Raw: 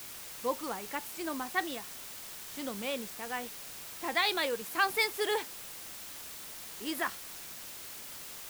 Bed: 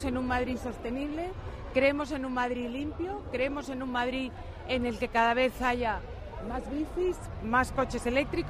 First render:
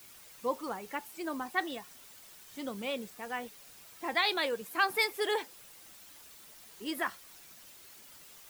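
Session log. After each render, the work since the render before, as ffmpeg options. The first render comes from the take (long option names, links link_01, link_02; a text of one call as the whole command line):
ffmpeg -i in.wav -af "afftdn=noise_reduction=10:noise_floor=-45" out.wav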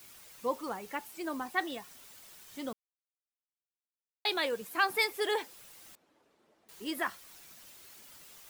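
ffmpeg -i in.wav -filter_complex "[0:a]asettb=1/sr,asplit=3[link_01][link_02][link_03];[link_01]atrim=end=5.954[link_04];[link_02]atrim=start=5.95:end=6.69,asetpts=PTS-STARTPTS,afade=type=in:duration=0.004:curve=qsin,afade=type=out:start_time=0.736:duration=0.004:curve=qsin,bandpass=frequency=400:width_type=q:width=1.1[link_05];[link_03]atrim=start=6.686[link_06];[link_04][link_05]acrossfade=duration=0.004:curve1=hsin:curve2=qsin[link_07];[link_07][link_06]acrossfade=duration=0.004:curve1=qsin:curve2=hsin,asplit=3[link_08][link_09][link_10];[link_08]atrim=end=2.73,asetpts=PTS-STARTPTS,afade=type=out:start_time=2.726:duration=0.004:curve=hsin[link_11];[link_09]atrim=start=2.73:end=4.25,asetpts=PTS-STARTPTS,volume=0[link_12];[link_10]atrim=start=4.25,asetpts=PTS-STARTPTS,afade=type=in:duration=0.004:curve=hsin[link_13];[link_11][link_12][link_13]concat=n=3:v=0:a=1" out.wav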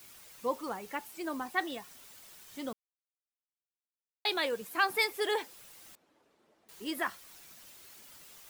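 ffmpeg -i in.wav -af anull out.wav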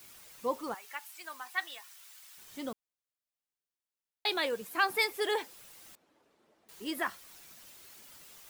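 ffmpeg -i in.wav -filter_complex "[0:a]asettb=1/sr,asplit=3[link_01][link_02][link_03];[link_01]atrim=end=0.744[link_04];[link_02]atrim=start=0.74:end=2.38,asetpts=PTS-STARTPTS,afade=type=in:duration=0.004:curve=qsin,afade=type=out:start_time=1.636:duration=0.004:curve=qsin,highpass=1200[link_05];[link_03]atrim=start=2.376[link_06];[link_04][link_05]acrossfade=duration=0.004:curve1=hsin:curve2=qsin[link_07];[link_07][link_06]acrossfade=duration=0.004:curve1=qsin:curve2=hsin" out.wav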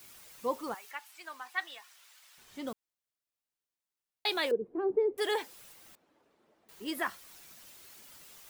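ffmpeg -i in.wav -filter_complex "[0:a]asettb=1/sr,asplit=3[link_01][link_02][link_03];[link_01]atrim=end=0.914[link_04];[link_02]atrim=start=0.91:end=2.67,asetpts=PTS-STARTPTS,afade=type=in:duration=0.004:curve=qsin,afade=type=out:start_time=1.756:duration=0.004:curve=qsin,highshelf=frequency=7200:gain=-10[link_05];[link_03]atrim=start=2.666[link_06];[link_04][link_05]acrossfade=duration=0.004:curve1=hsin:curve2=qsin[link_07];[link_07][link_06]acrossfade=duration=0.004:curve1=qsin:curve2=hsin,asettb=1/sr,asplit=3[link_08][link_09][link_10];[link_08]atrim=end=4.514[link_11];[link_09]atrim=start=4.51:end=5.18,asetpts=PTS-STARTPTS,afade=type=in:duration=0.004:curve=qsin,afade=type=out:start_time=0.666:duration=0.004:curve=qsin,lowpass=frequency=400:width_type=q:width=4.2[link_12];[link_10]atrim=start=5.176[link_13];[link_11][link_12]acrossfade=duration=0.004:curve1=hsin:curve2=qsin[link_14];[link_14][link_13]acrossfade=duration=0.004:curve1=qsin:curve2=hsin,asettb=1/sr,asplit=3[link_15][link_16][link_17];[link_15]atrim=end=5.734[link_18];[link_16]atrim=start=5.73:end=6.88,asetpts=PTS-STARTPTS,afade=type=in:duration=0.004:curve=qsin,afade=type=out:start_time=1.146:duration=0.004:curve=qsin,equalizer=frequency=8900:width_type=o:width=2.7:gain=-4[link_19];[link_17]atrim=start=6.876[link_20];[link_18][link_19]acrossfade=duration=0.004:curve1=hsin:curve2=qsin[link_21];[link_21][link_20]acrossfade=duration=0.004:curve1=qsin:curve2=hsin" out.wav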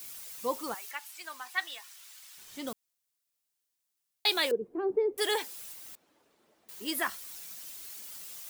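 ffmpeg -i in.wav -af "highshelf=frequency=3400:gain=10.5" out.wav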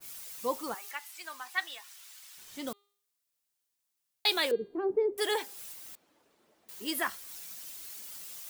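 ffmpeg -i in.wav -af "bandreject=frequency=404.1:width_type=h:width=4,bandreject=frequency=808.2:width_type=h:width=4,bandreject=frequency=1212.3:width_type=h:width=4,bandreject=frequency=1616.4:width_type=h:width=4,bandreject=frequency=2020.5:width_type=h:width=4,bandreject=frequency=2424.6:width_type=h:width=4,bandreject=frequency=2828.7:width_type=h:width=4,bandreject=frequency=3232.8:width_type=h:width=4,bandreject=frequency=3636.9:width_type=h:width=4,bandreject=frequency=4041:width_type=h:width=4,bandreject=frequency=4445.1:width_type=h:width=4,adynamicequalizer=threshold=0.00631:dfrequency=1900:dqfactor=0.7:tfrequency=1900:tqfactor=0.7:attack=5:release=100:ratio=0.375:range=2:mode=cutabove:tftype=highshelf" out.wav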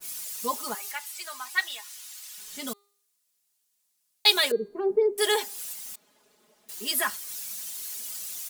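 ffmpeg -i in.wav -af "equalizer=frequency=9300:width=0.36:gain=7.5,aecho=1:1:4.8:0.99" out.wav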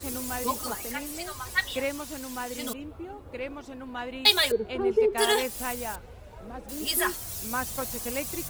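ffmpeg -i in.wav -i bed.wav -filter_complex "[1:a]volume=-5.5dB[link_01];[0:a][link_01]amix=inputs=2:normalize=0" out.wav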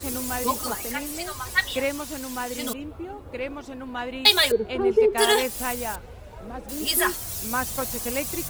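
ffmpeg -i in.wav -af "volume=4dB,alimiter=limit=-1dB:level=0:latency=1" out.wav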